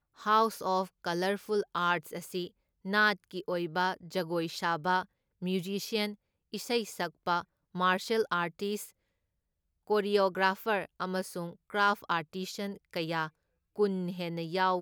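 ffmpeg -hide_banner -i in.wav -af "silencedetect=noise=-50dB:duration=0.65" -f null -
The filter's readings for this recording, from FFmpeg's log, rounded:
silence_start: 8.90
silence_end: 9.87 | silence_duration: 0.97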